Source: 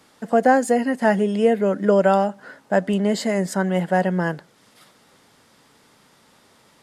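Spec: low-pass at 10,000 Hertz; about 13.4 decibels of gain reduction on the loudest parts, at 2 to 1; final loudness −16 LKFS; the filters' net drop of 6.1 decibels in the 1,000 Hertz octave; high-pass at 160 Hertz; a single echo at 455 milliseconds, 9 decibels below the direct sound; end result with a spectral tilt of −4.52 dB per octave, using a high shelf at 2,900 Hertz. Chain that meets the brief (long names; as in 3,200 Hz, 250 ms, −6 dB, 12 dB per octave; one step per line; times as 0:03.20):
high-pass filter 160 Hz
low-pass filter 10,000 Hz
parametric band 1,000 Hz −9 dB
high-shelf EQ 2,900 Hz −6 dB
downward compressor 2 to 1, threshold −40 dBFS
single-tap delay 455 ms −9 dB
level +18.5 dB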